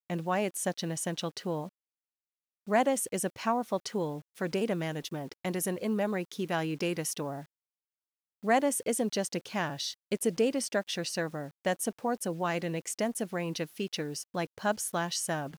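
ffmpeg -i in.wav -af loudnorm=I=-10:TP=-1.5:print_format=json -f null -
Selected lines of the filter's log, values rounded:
"input_i" : "-32.3",
"input_tp" : "-13.1",
"input_lra" : "1.4",
"input_thresh" : "-42.4",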